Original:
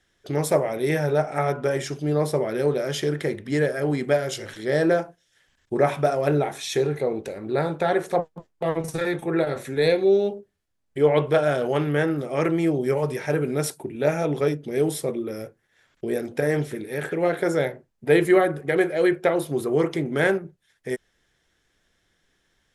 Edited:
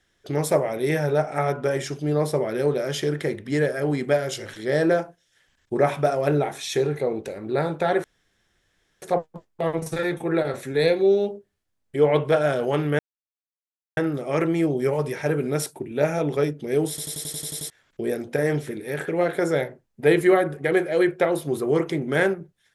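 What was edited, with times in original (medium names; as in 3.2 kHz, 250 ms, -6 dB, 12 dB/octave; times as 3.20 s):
8.04 s: insert room tone 0.98 s
12.01 s: insert silence 0.98 s
14.93 s: stutter in place 0.09 s, 9 plays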